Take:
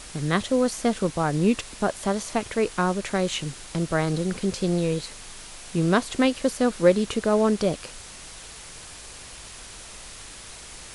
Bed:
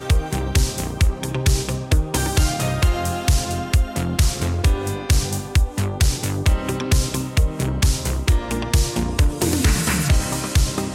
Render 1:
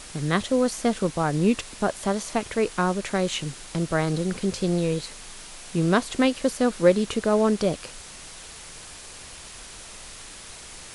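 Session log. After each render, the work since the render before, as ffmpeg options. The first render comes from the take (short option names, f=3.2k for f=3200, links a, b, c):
-af "bandreject=f=50:t=h:w=4,bandreject=f=100:t=h:w=4"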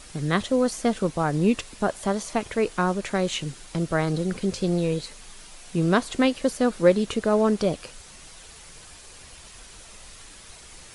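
-af "afftdn=nr=6:nf=-43"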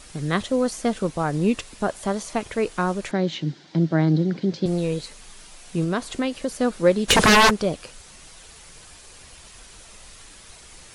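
-filter_complex "[0:a]asettb=1/sr,asplit=3[a][b][c];[a]atrim=end=3.114[d];[b]atrim=start=3.11:end=4.66,asetpts=PTS-STARTPTS,afade=t=in:d=0.004:c=qsin,afade=t=out:st=1.546:d=0.004:c=qsin,highpass=f=130:w=0.5412,highpass=f=130:w=1.3066,equalizer=f=160:t=q:w=4:g=8,equalizer=f=310:t=q:w=4:g=9,equalizer=f=480:t=q:w=4:g=-4,equalizer=f=1.2k:t=q:w=4:g=-8,equalizer=f=2.6k:t=q:w=4:g=-8,lowpass=f=4.9k:w=0.5412,lowpass=f=4.9k:w=1.3066[e];[c]atrim=start=4.656[f];[d][e]acrossfade=d=0.004:c1=hsin:c2=qsin[g];[g][f]acrossfade=d=0.004:c1=qsin:c2=hsin,asettb=1/sr,asplit=3[h][i][j];[h]atrim=end=5.844[k];[i]atrim=start=5.84:end=6.55,asetpts=PTS-STARTPTS,afade=t=in:d=0.004:c=qsin,afade=t=out:st=0.706:d=0.004:c=qsin,acompressor=threshold=-22dB:ratio=2:attack=3.2:release=140:knee=1:detection=peak[l];[j]atrim=start=6.546[m];[k][l]acrossfade=d=0.004:c1=hsin:c2=qsin[n];[n][m]acrossfade=d=0.004:c1=qsin:c2=hsin,asplit=3[o][p][q];[o]afade=t=out:st=7.08:d=0.02[r];[p]aeval=exprs='0.299*sin(PI/2*6.31*val(0)/0.299)':c=same,afade=t=in:st=7.08:d=0.02,afade=t=out:st=7.49:d=0.02[s];[q]afade=t=in:st=7.49:d=0.02[t];[r][s][t]amix=inputs=3:normalize=0"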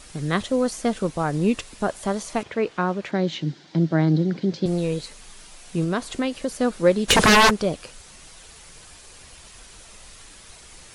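-filter_complex "[0:a]asettb=1/sr,asplit=3[a][b][c];[a]atrim=end=2.434[d];[b]atrim=start=2.43:end=3.12,asetpts=PTS-STARTPTS,afade=t=in:d=0.004:c=qsin,afade=t=out:st=0.686:d=0.004:c=qsin,highpass=110,lowpass=3.9k[e];[c]atrim=start=3.116[f];[d][e]acrossfade=d=0.004:c1=hsin:c2=qsin[g];[g][f]acrossfade=d=0.004:c1=qsin:c2=hsin"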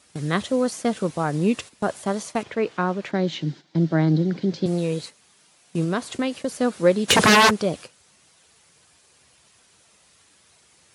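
-af "highpass=f=85:w=0.5412,highpass=f=85:w=1.3066,agate=range=-11dB:threshold=-36dB:ratio=16:detection=peak"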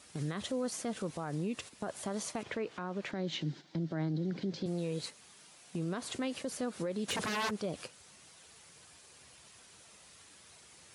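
-af "acompressor=threshold=-32dB:ratio=2,alimiter=level_in=3.5dB:limit=-24dB:level=0:latency=1:release=88,volume=-3.5dB"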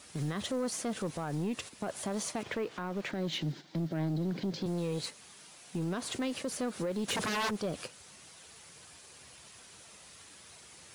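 -filter_complex "[0:a]asplit=2[a][b];[b]acrusher=bits=4:mode=log:mix=0:aa=0.000001,volume=-5dB[c];[a][c]amix=inputs=2:normalize=0,asoftclip=type=tanh:threshold=-26.5dB"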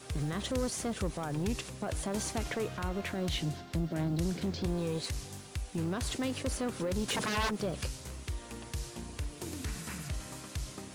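-filter_complex "[1:a]volume=-21dB[a];[0:a][a]amix=inputs=2:normalize=0"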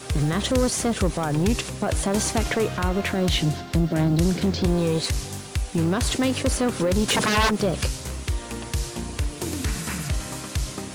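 -af "volume=11.5dB"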